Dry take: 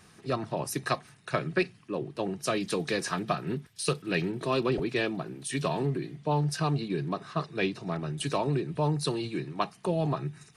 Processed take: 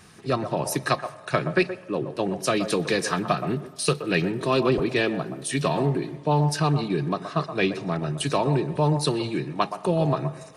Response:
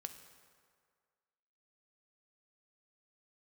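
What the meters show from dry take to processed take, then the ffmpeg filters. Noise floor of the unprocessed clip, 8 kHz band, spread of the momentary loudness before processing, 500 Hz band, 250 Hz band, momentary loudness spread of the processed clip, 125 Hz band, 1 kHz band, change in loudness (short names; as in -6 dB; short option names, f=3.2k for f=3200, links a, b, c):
-57 dBFS, +5.5 dB, 6 LU, +6.0 dB, +5.5 dB, 6 LU, +5.5 dB, +6.0 dB, +6.0 dB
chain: -filter_complex "[0:a]asplit=2[a][b];[b]bandpass=f=700:t=q:w=0.98:csg=0[c];[1:a]atrim=start_sample=2205,asetrate=48510,aresample=44100,adelay=123[d];[c][d]afir=irnorm=-1:irlink=0,volume=-2.5dB[e];[a][e]amix=inputs=2:normalize=0,volume=5.5dB"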